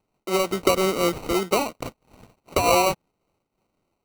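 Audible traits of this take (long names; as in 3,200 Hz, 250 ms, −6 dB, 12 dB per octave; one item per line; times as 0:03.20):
aliases and images of a low sample rate 1,700 Hz, jitter 0%
amplitude modulation by smooth noise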